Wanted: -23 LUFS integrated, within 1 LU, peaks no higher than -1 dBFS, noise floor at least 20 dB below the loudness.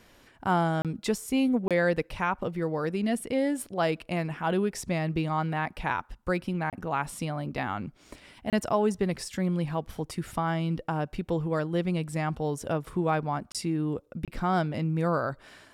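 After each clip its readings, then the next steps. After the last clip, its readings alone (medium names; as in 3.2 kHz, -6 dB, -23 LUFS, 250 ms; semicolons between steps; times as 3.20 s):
dropouts 6; longest dropout 27 ms; loudness -29.5 LUFS; peak level -12.5 dBFS; loudness target -23.0 LUFS
-> interpolate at 0.82/1.68/6.70/8.50/13.52/14.25 s, 27 ms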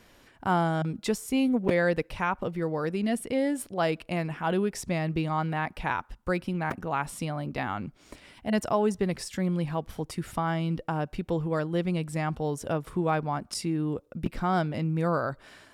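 dropouts 0; loudness -29.5 LUFS; peak level -9.0 dBFS; loudness target -23.0 LUFS
-> trim +6.5 dB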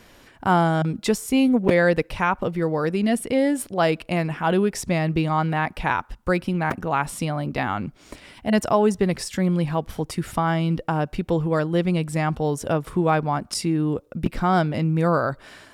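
loudness -23.0 LUFS; peak level -2.5 dBFS; noise floor -52 dBFS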